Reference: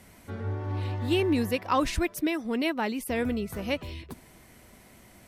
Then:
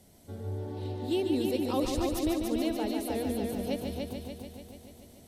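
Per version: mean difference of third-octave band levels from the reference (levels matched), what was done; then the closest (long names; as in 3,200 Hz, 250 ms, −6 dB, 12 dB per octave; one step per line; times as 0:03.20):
7.0 dB: flat-topped bell 1,600 Hz −11.5 dB
mains-hum notches 60/120/180/240 Hz
echo machine with several playback heads 145 ms, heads first and second, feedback 62%, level −6 dB
level −4 dB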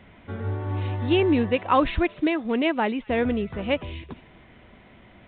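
5.5 dB: dynamic equaliser 650 Hz, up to +3 dB, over −35 dBFS, Q 0.85
delay with a high-pass on its return 226 ms, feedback 36%, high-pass 2,900 Hz, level −17.5 dB
level +3.5 dB
mu-law 64 kbit/s 8,000 Hz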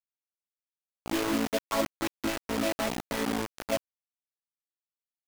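17.0 dB: channel vocoder with a chord as carrier major triad, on A3
comb filter 1.6 ms, depth 54%
bit reduction 5 bits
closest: second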